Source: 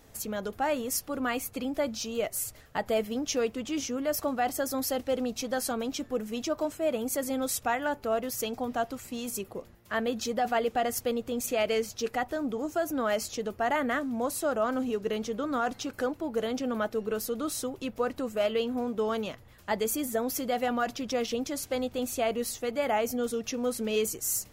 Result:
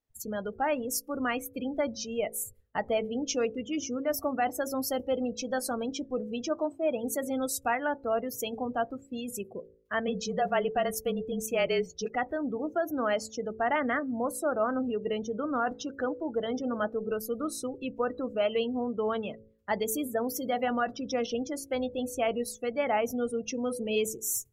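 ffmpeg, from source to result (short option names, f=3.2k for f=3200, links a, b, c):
-filter_complex "[0:a]asplit=3[a][b][c];[a]afade=t=out:st=10.06:d=0.02[d];[b]afreqshift=-30,afade=t=in:st=10.06:d=0.02,afade=t=out:st=12.04:d=0.02[e];[c]afade=t=in:st=12.04:d=0.02[f];[d][e][f]amix=inputs=3:normalize=0,afftdn=nr=33:nf=-37,equalizer=f=2.4k:t=o:w=0.77:g=2,bandreject=f=54.98:t=h:w=4,bandreject=f=109.96:t=h:w=4,bandreject=f=164.94:t=h:w=4,bandreject=f=219.92:t=h:w=4,bandreject=f=274.9:t=h:w=4,bandreject=f=329.88:t=h:w=4,bandreject=f=384.86:t=h:w=4,bandreject=f=439.84:t=h:w=4,bandreject=f=494.82:t=h:w=4,bandreject=f=549.8:t=h:w=4"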